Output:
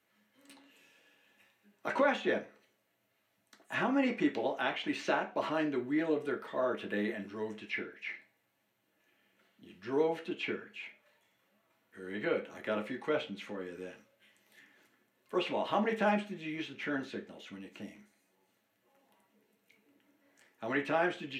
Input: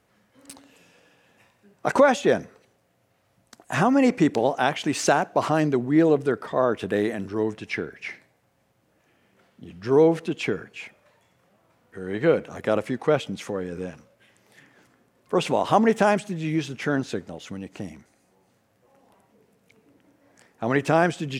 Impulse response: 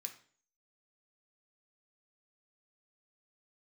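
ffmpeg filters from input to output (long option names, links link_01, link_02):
-filter_complex "[0:a]acrossover=split=450|2800[link_01][link_02][link_03];[link_02]crystalizer=i=6:c=0[link_04];[link_03]acompressor=threshold=-55dB:ratio=5[link_05];[link_01][link_04][link_05]amix=inputs=3:normalize=0[link_06];[1:a]atrim=start_sample=2205,asetrate=74970,aresample=44100[link_07];[link_06][link_07]afir=irnorm=-1:irlink=0"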